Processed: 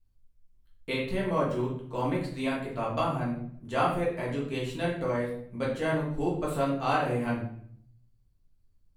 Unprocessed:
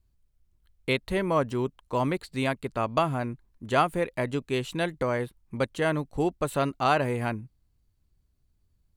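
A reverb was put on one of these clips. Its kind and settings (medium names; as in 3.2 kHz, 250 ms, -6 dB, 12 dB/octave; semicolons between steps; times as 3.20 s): simulated room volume 110 m³, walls mixed, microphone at 1.6 m; trim -10 dB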